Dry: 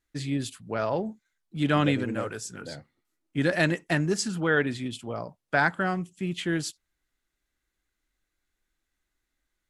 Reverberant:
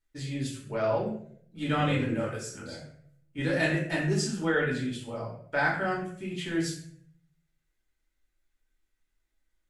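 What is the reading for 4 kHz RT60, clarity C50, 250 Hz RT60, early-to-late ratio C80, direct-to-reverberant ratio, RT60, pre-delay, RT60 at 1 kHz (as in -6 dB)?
0.45 s, 4.5 dB, 0.75 s, 8.0 dB, -5.0 dB, 0.60 s, 3 ms, 0.55 s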